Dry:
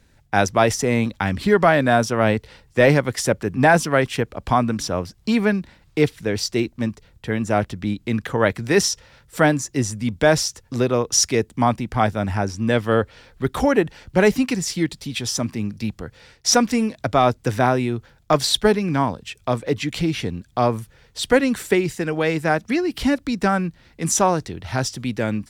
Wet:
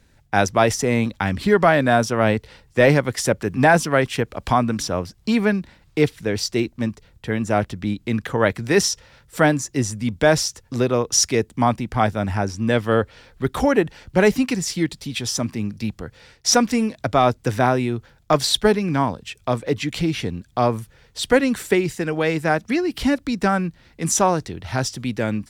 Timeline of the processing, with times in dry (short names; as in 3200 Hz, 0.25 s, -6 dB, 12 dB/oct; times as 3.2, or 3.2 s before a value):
3.25–4.97 mismatched tape noise reduction encoder only